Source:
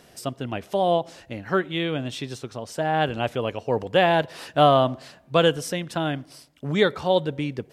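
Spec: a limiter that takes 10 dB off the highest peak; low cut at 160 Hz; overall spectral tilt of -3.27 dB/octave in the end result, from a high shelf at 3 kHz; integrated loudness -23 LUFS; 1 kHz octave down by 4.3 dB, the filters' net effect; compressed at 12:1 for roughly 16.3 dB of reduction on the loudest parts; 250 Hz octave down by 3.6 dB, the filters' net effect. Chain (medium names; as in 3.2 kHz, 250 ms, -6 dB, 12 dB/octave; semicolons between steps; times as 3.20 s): high-pass 160 Hz; peaking EQ 250 Hz -3.5 dB; peaking EQ 1 kHz -7.5 dB; treble shelf 3 kHz +8.5 dB; compression 12:1, threshold -31 dBFS; trim +16.5 dB; peak limiter -11.5 dBFS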